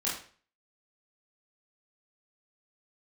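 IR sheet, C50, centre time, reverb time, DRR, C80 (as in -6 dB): 4.5 dB, 39 ms, 0.45 s, -7.5 dB, 9.5 dB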